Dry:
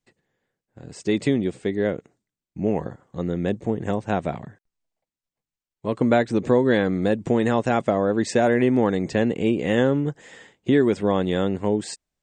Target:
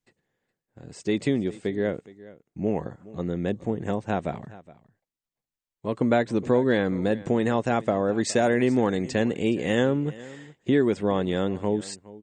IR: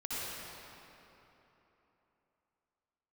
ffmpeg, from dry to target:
-filter_complex "[0:a]asettb=1/sr,asplit=3[link_01][link_02][link_03];[link_01]atrim=end=8.154[link_04];[link_02]atrim=start=8.15:end=9.86,asetpts=PTS-STARTPTS,afade=type=in:duration=0.004:curve=qsin,afade=type=out:start_time=1.706:duration=0.004:curve=qsin,highshelf=frequency=3900:gain=7.5[link_05];[link_03]atrim=start=9.856[link_06];[link_04][link_05]acrossfade=duration=0.004:curve1=hsin:curve2=qsin[link_07];[link_07][link_06]acrossfade=duration=0.004:curve1=qsin:curve2=hsin,asplit=2[link_08][link_09];[link_09]aecho=0:1:417:0.106[link_10];[link_08][link_10]amix=inputs=2:normalize=0,volume=-3dB"

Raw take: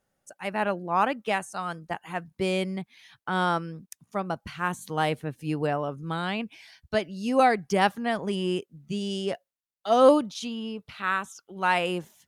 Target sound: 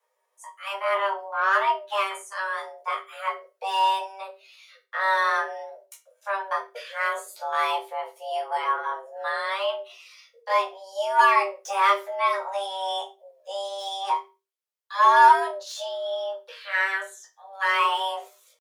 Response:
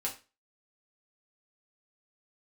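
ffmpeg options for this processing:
-filter_complex "[0:a]acrossover=split=370|3000[link_01][link_02][link_03];[link_01]acompressor=threshold=-32dB:ratio=5[link_04];[link_04][link_02][link_03]amix=inputs=3:normalize=0,acrossover=split=2400[link_05][link_06];[link_05]aeval=exprs='0.398*(cos(1*acos(clip(val(0)/0.398,-1,1)))-cos(1*PI/2))+0.00251*(cos(2*acos(clip(val(0)/0.398,-1,1)))-cos(2*PI/2))+0.0158*(cos(8*acos(clip(val(0)/0.398,-1,1)))-cos(8*PI/2))':channel_layout=same[link_07];[link_06]volume=33dB,asoftclip=hard,volume=-33dB[link_08];[link_07][link_08]amix=inputs=2:normalize=0,afreqshift=390,atempo=0.66[link_09];[1:a]atrim=start_sample=2205,asetrate=52920,aresample=44100[link_10];[link_09][link_10]afir=irnorm=-1:irlink=0,volume=1dB"

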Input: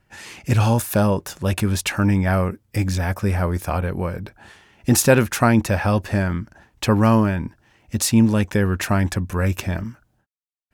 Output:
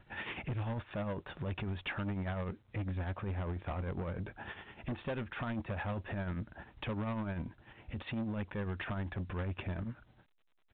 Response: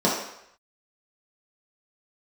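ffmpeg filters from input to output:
-af "aemphasis=mode=reproduction:type=50kf,acompressor=threshold=-36dB:ratio=3,tremolo=f=10:d=0.64,aresample=8000,asoftclip=type=tanh:threshold=-37.5dB,aresample=44100,volume=4.5dB" -ar 8000 -c:a pcm_alaw

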